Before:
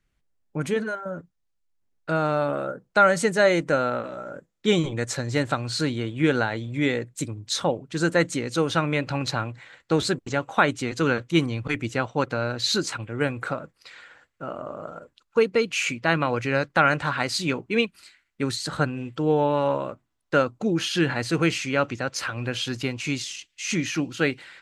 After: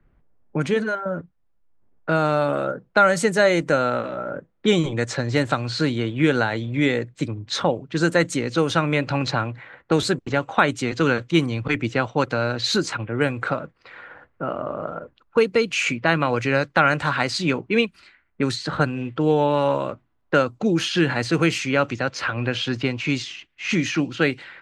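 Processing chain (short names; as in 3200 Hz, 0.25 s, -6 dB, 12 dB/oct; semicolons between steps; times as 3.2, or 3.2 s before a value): low-pass opened by the level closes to 1100 Hz, open at -19.5 dBFS; three-band squash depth 40%; gain +3 dB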